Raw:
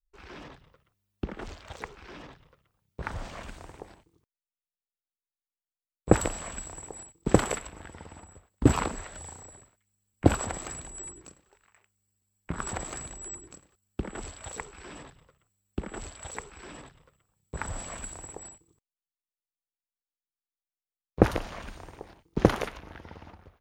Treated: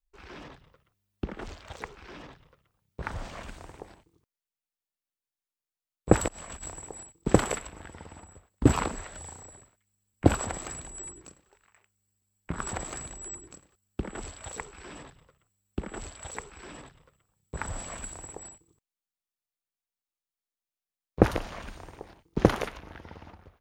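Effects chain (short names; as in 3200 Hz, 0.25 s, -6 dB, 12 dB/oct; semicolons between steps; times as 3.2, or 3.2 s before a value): 6.28–6.7 negative-ratio compressor -42 dBFS, ratio -0.5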